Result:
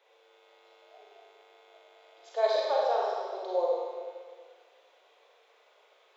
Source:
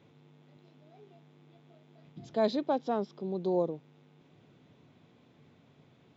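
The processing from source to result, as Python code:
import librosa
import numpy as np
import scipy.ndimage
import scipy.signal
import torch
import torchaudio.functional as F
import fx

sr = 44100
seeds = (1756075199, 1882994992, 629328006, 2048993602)

y = scipy.signal.sosfilt(scipy.signal.butter(8, 460.0, 'highpass', fs=sr, output='sos'), x)
y = fx.rev_schroeder(y, sr, rt60_s=1.7, comb_ms=31, drr_db=-4.5)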